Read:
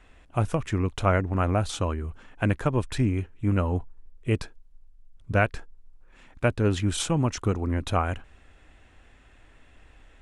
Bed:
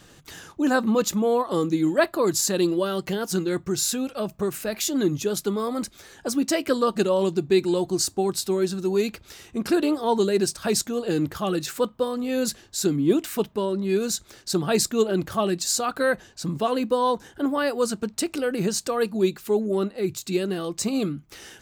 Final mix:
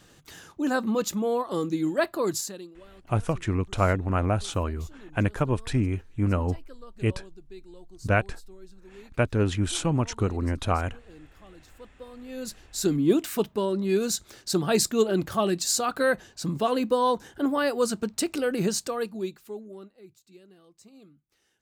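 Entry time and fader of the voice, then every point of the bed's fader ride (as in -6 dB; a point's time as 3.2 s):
2.75 s, -0.5 dB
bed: 2.35 s -4.5 dB
2.72 s -26 dB
11.71 s -26 dB
12.9 s -1 dB
18.71 s -1 dB
20.24 s -27.5 dB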